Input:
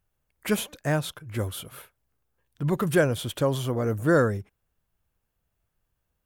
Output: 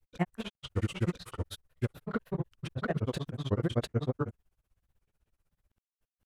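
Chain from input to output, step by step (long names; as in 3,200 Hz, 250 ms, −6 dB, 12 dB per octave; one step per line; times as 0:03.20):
treble cut that deepens with the level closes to 2,100 Hz, closed at −20 dBFS
low-shelf EQ 93 Hz +8 dB
downward compressor, threshold −24 dBFS, peak gain reduction 9 dB
on a send: flutter between parallel walls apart 5.8 metres, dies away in 0.29 s
on the sum: granular cloud 64 ms, grains 16 per second, spray 716 ms, pitch spread up and down by 3 semitones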